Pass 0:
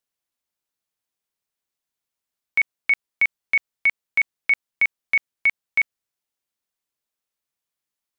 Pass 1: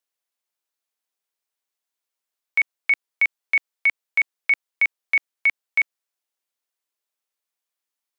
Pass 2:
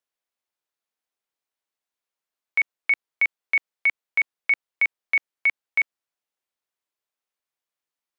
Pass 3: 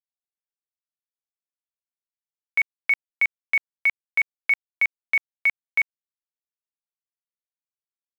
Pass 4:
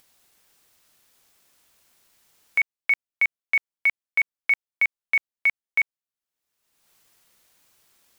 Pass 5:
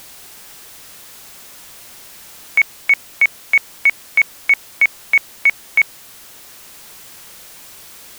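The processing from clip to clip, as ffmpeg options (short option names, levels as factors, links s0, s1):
-af "highpass=370"
-af "highshelf=f=4100:g=-7.5"
-af "acrusher=bits=8:dc=4:mix=0:aa=0.000001"
-af "acompressor=mode=upward:threshold=0.0158:ratio=2.5"
-af "aeval=exprs='val(0)+0.5*0.0119*sgn(val(0))':c=same,volume=2.37"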